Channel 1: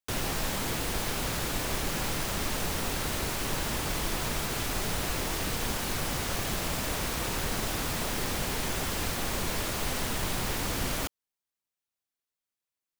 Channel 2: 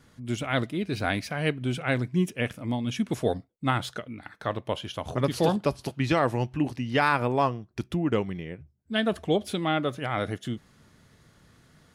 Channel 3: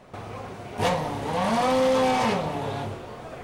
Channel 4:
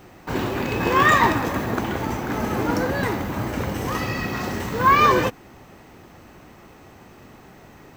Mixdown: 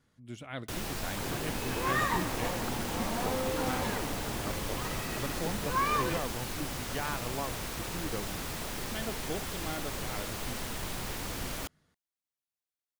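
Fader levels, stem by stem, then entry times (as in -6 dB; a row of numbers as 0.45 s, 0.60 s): -6.0 dB, -13.5 dB, -13.5 dB, -14.0 dB; 0.60 s, 0.00 s, 1.60 s, 0.90 s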